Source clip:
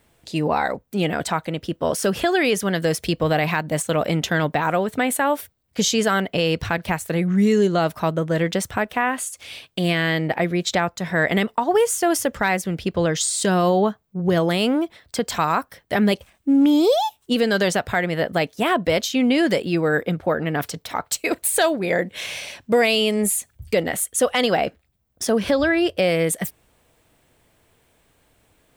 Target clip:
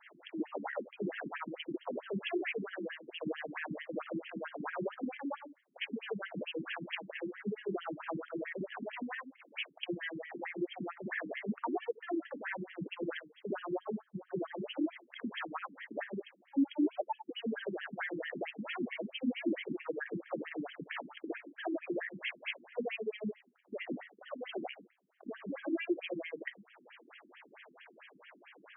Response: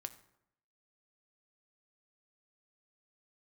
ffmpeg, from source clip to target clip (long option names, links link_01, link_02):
-filter_complex "[0:a]tiltshelf=frequency=970:gain=-5,acrossover=split=460[link_01][link_02];[link_02]acompressor=threshold=-33dB:ratio=2.5[link_03];[link_01][link_03]amix=inputs=2:normalize=0,alimiter=limit=-21dB:level=0:latency=1:release=21,acompressor=threshold=-45dB:ratio=3,asoftclip=type=tanh:threshold=-31dB,asplit=2[link_04][link_05];[1:a]atrim=start_sample=2205,atrim=end_sample=6174,adelay=58[link_06];[link_05][link_06]afir=irnorm=-1:irlink=0,volume=8dB[link_07];[link_04][link_07]amix=inputs=2:normalize=0,afftfilt=real='re*between(b*sr/1024,240*pow(2400/240,0.5+0.5*sin(2*PI*4.5*pts/sr))/1.41,240*pow(2400/240,0.5+0.5*sin(2*PI*4.5*pts/sr))*1.41)':imag='im*between(b*sr/1024,240*pow(2400/240,0.5+0.5*sin(2*PI*4.5*pts/sr))/1.41,240*pow(2400/240,0.5+0.5*sin(2*PI*4.5*pts/sr))*1.41)':win_size=1024:overlap=0.75,volume=7dB"